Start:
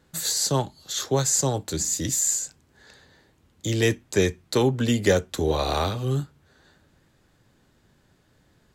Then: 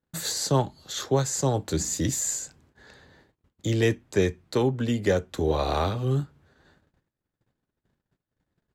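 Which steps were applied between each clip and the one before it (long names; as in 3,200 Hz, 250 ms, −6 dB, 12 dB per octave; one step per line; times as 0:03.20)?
noise gate −58 dBFS, range −27 dB
high-shelf EQ 3,300 Hz −9 dB
speech leveller within 4 dB 0.5 s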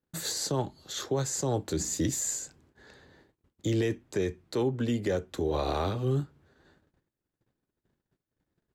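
parametric band 350 Hz +4.5 dB 0.83 octaves
brickwall limiter −16 dBFS, peak gain reduction 8 dB
level −3.5 dB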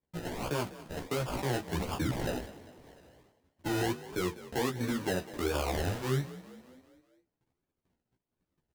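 sample-and-hold swept by an LFO 31×, swing 60% 1.4 Hz
multi-voice chorus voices 2, 1.1 Hz, delay 14 ms, depth 3 ms
echo with shifted repeats 199 ms, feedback 53%, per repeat +40 Hz, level −16.5 dB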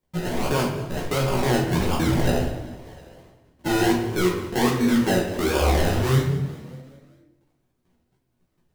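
rectangular room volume 200 cubic metres, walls mixed, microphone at 1 metre
level +7.5 dB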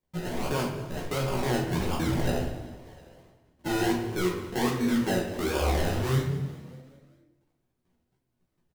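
single-tap delay 286 ms −23.5 dB
level −6 dB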